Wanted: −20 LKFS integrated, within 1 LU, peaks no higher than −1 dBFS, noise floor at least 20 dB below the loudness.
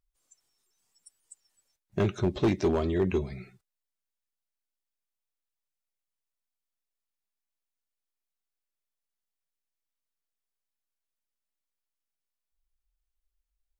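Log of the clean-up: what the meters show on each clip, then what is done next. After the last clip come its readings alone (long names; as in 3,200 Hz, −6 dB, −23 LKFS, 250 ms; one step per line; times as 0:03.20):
share of clipped samples 0.3%; peaks flattened at −19.0 dBFS; integrated loudness −28.5 LKFS; sample peak −19.0 dBFS; target loudness −20.0 LKFS
→ clipped peaks rebuilt −19 dBFS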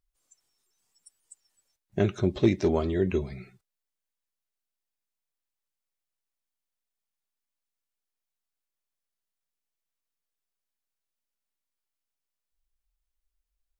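share of clipped samples 0.0%; integrated loudness −27.0 LKFS; sample peak −10.0 dBFS; target loudness −20.0 LKFS
→ level +7 dB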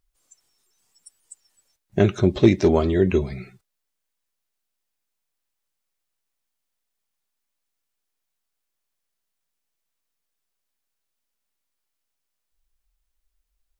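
integrated loudness −20.0 LKFS; sample peak −3.0 dBFS; background noise floor −80 dBFS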